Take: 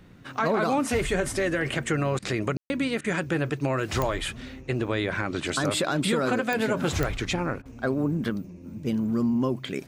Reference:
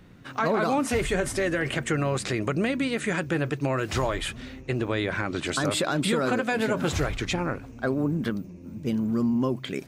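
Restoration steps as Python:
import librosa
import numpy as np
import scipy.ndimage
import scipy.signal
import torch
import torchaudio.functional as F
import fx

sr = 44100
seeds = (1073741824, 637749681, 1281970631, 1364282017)

y = fx.fix_declick_ar(x, sr, threshold=10.0)
y = fx.fix_ambience(y, sr, seeds[0], print_start_s=0.0, print_end_s=0.5, start_s=2.57, end_s=2.7)
y = fx.fix_interpolate(y, sr, at_s=(2.19, 3.01, 7.62), length_ms=33.0)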